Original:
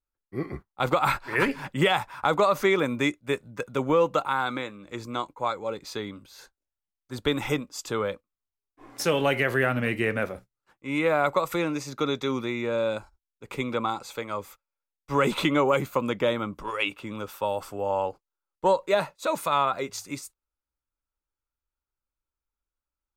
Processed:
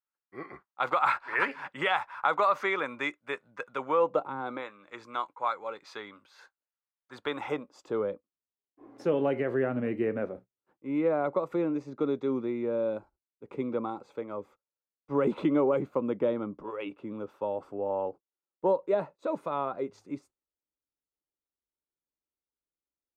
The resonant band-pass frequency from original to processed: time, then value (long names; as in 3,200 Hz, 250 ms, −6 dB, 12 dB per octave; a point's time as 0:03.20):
resonant band-pass, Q 1
0:03.89 1,300 Hz
0:04.36 240 Hz
0:04.69 1,300 Hz
0:07.15 1,300 Hz
0:08.08 340 Hz